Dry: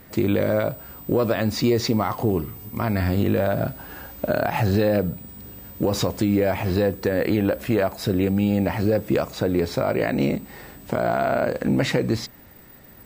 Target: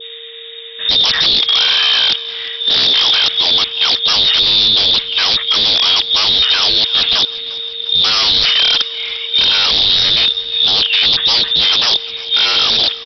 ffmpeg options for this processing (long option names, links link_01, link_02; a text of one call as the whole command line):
ffmpeg -i in.wav -filter_complex "[0:a]areverse,adynamicequalizer=threshold=0.01:dfrequency=1800:dqfactor=1.1:tfrequency=1800:tqfactor=1.1:attack=5:release=100:ratio=0.375:range=2.5:mode=cutabove:tftype=bell,lowpass=frequency=3200:width_type=q:width=0.5098,lowpass=frequency=3200:width_type=q:width=0.6013,lowpass=frequency=3200:width_type=q:width=0.9,lowpass=frequency=3200:width_type=q:width=2.563,afreqshift=-3800,aresample=11025,aeval=exprs='0.0596*(abs(mod(val(0)/0.0596+3,4)-2)-1)':channel_layout=same,aresample=44100,crystalizer=i=10:c=0,asplit=2[link_01][link_02];[link_02]asplit=4[link_03][link_04][link_05][link_06];[link_03]adelay=351,afreqshift=-43,volume=-19dB[link_07];[link_04]adelay=702,afreqshift=-86,volume=-24.5dB[link_08];[link_05]adelay=1053,afreqshift=-129,volume=-30dB[link_09];[link_06]adelay=1404,afreqshift=-172,volume=-35.5dB[link_10];[link_07][link_08][link_09][link_10]amix=inputs=4:normalize=0[link_11];[link_01][link_11]amix=inputs=2:normalize=0,aeval=exprs='val(0)+0.00891*sin(2*PI*460*n/s)':channel_layout=same,volume=4dB" out.wav